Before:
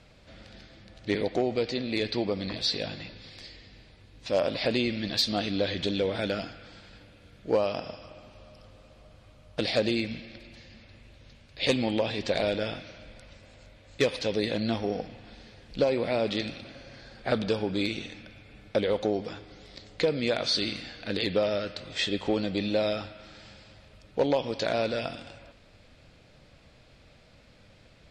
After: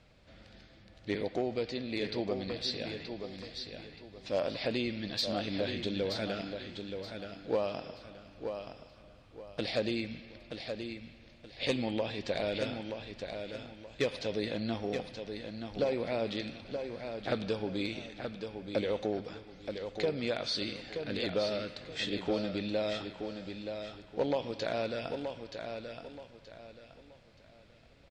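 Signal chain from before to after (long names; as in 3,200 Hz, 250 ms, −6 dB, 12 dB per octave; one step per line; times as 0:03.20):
high-shelf EQ 6,200 Hz −4.5 dB
repeating echo 926 ms, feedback 30%, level −7 dB
level −6 dB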